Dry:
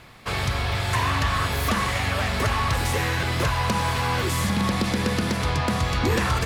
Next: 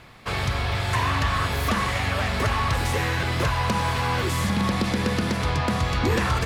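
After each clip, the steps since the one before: high shelf 6000 Hz -4.5 dB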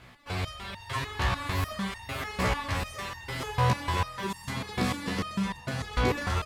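echo 0.532 s -5.5 dB; stepped resonator 6.7 Hz 62–910 Hz; gain +3.5 dB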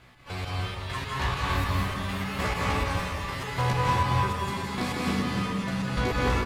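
echo 0.42 s -12.5 dB; reverb RT60 1.3 s, pre-delay 0.15 s, DRR -3 dB; gain -2.5 dB

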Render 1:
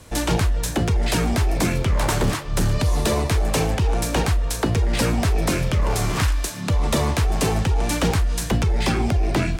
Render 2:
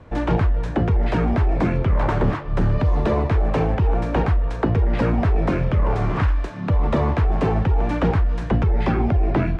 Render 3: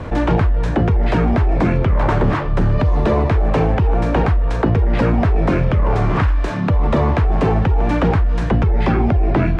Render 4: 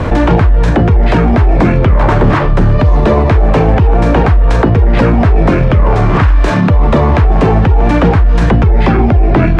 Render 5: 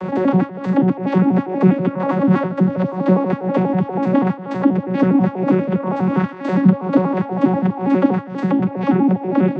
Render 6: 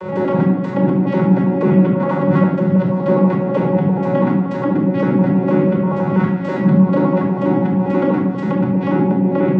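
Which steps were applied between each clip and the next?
LPF 1600 Hz 12 dB/oct; gain +1.5 dB
fast leveller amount 50%; gain +2.5 dB
maximiser +14.5 dB; gain -1 dB
arpeggiated vocoder bare fifth, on F#3, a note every 81 ms; gain -4.5 dB
shoebox room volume 2200 m³, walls furnished, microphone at 4.8 m; gain -4 dB

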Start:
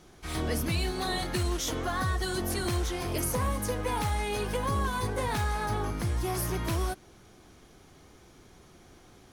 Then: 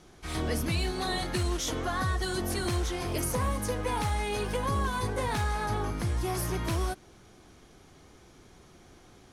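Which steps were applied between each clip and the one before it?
LPF 12000 Hz 12 dB/oct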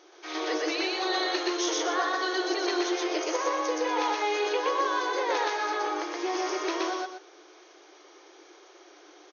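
FFT band-pass 300–6700 Hz; on a send: loudspeakers at several distances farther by 42 m 0 dB, 84 m -9 dB; on the sum: gain +2 dB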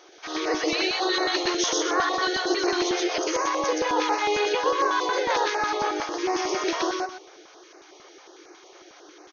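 stepped notch 11 Hz 240–3300 Hz; gain +5.5 dB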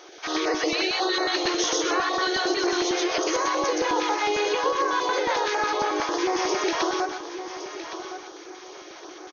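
compressor 4:1, threshold -27 dBFS, peak gain reduction 8 dB; feedback echo 1.114 s, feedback 28%, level -11 dB; gain +5 dB

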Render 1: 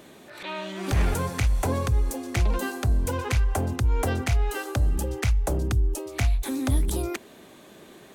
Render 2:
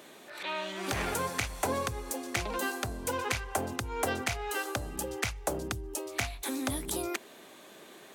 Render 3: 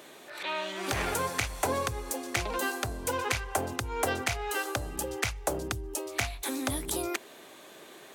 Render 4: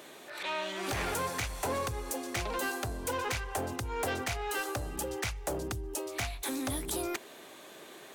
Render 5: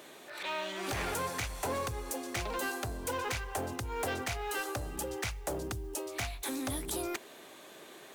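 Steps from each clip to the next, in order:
HPF 510 Hz 6 dB/oct
bell 210 Hz -5 dB 0.54 oct; gain +2 dB
soft clip -27 dBFS, distortion -11 dB
modulation noise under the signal 29 dB; gain -1.5 dB

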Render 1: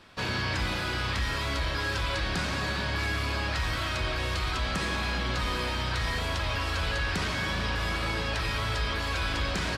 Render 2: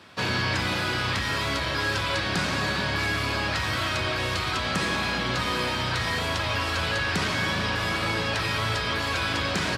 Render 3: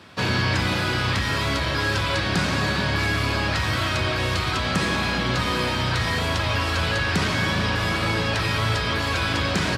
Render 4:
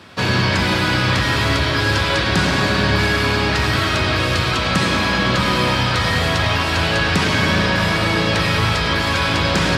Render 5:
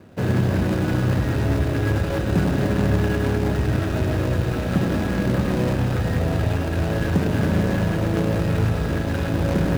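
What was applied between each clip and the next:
HPF 88 Hz 24 dB/oct; gain +4.5 dB
low shelf 290 Hz +5 dB; gain +2 dB
analogue delay 0.103 s, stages 4096, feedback 82%, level -8.5 dB; gain +4.5 dB
median filter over 41 samples

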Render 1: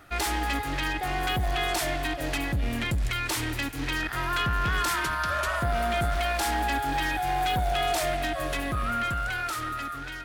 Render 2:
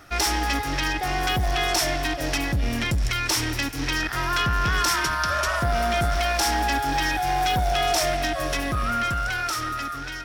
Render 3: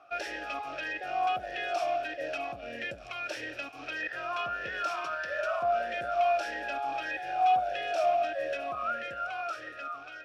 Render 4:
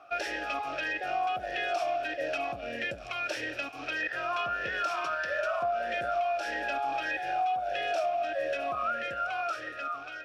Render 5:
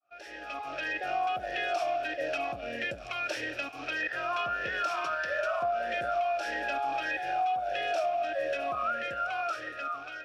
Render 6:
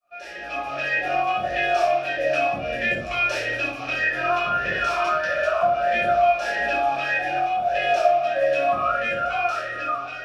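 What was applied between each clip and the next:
bell 5500 Hz +12.5 dB 0.28 oct; gain +3.5 dB
vowel sweep a-e 1.6 Hz; gain +2.5 dB
compressor 10:1, threshold -30 dBFS, peak gain reduction 9.5 dB; gain +3.5 dB
opening faded in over 0.98 s
shoebox room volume 550 m³, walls furnished, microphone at 5.9 m

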